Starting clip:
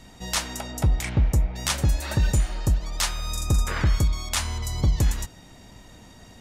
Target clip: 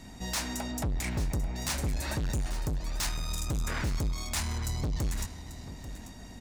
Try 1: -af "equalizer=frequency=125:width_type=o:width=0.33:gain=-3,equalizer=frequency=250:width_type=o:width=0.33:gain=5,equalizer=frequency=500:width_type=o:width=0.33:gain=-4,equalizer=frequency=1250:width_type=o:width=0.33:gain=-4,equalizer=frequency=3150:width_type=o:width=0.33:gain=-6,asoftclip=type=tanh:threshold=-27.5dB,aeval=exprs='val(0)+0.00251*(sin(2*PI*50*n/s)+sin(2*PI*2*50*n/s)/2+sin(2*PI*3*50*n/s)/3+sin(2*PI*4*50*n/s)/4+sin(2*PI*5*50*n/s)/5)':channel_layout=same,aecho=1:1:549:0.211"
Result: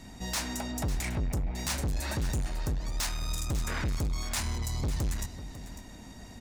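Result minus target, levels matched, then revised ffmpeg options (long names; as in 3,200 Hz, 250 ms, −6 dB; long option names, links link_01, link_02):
echo 291 ms early
-af "equalizer=frequency=125:width_type=o:width=0.33:gain=-3,equalizer=frequency=250:width_type=o:width=0.33:gain=5,equalizer=frequency=500:width_type=o:width=0.33:gain=-4,equalizer=frequency=1250:width_type=o:width=0.33:gain=-4,equalizer=frequency=3150:width_type=o:width=0.33:gain=-6,asoftclip=type=tanh:threshold=-27.5dB,aeval=exprs='val(0)+0.00251*(sin(2*PI*50*n/s)+sin(2*PI*2*50*n/s)/2+sin(2*PI*3*50*n/s)/3+sin(2*PI*4*50*n/s)/4+sin(2*PI*5*50*n/s)/5)':channel_layout=same,aecho=1:1:840:0.211"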